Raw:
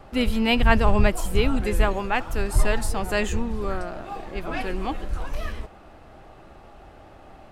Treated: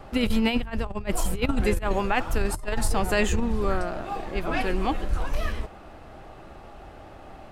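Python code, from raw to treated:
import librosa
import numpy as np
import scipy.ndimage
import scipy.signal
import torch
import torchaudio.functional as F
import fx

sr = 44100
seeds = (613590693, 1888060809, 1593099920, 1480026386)

y = fx.over_compress(x, sr, threshold_db=-22.0, ratio=-0.5)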